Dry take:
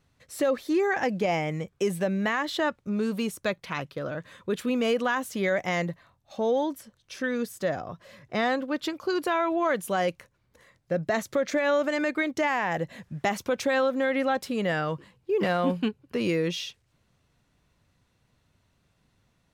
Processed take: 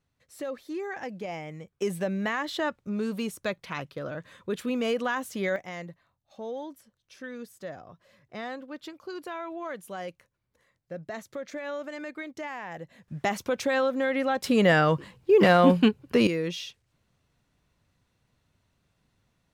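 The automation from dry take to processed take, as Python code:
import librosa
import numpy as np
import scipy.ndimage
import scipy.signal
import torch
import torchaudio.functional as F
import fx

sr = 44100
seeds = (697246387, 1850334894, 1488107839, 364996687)

y = fx.gain(x, sr, db=fx.steps((0.0, -10.0), (1.82, -2.5), (5.56, -11.0), (13.08, -1.0), (14.44, 7.0), (16.27, -3.0)))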